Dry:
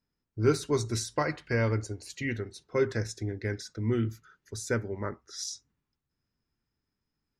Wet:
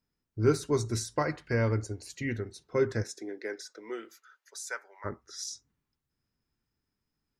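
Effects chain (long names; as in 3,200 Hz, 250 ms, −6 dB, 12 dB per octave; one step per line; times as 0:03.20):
0:03.02–0:05.04: high-pass filter 250 Hz → 890 Hz 24 dB per octave
dynamic equaliser 3,100 Hz, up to −5 dB, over −51 dBFS, Q 1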